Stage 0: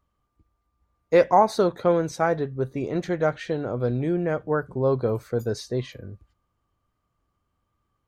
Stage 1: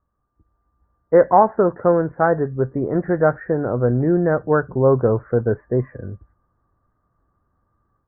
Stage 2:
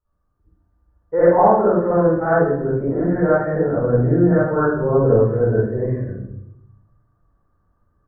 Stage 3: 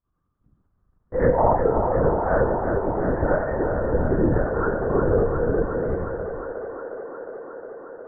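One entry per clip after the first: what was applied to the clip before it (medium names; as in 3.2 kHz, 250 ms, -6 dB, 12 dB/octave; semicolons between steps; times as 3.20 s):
steep low-pass 1.8 kHz 72 dB/octave; level rider gain up to 7.5 dB
reverberation RT60 0.75 s, pre-delay 46 ms, DRR -11 dB; trim -13 dB
LPC vocoder at 8 kHz whisper; feedback echo behind a band-pass 359 ms, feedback 81%, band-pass 910 Hz, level -6 dB; trim -5.5 dB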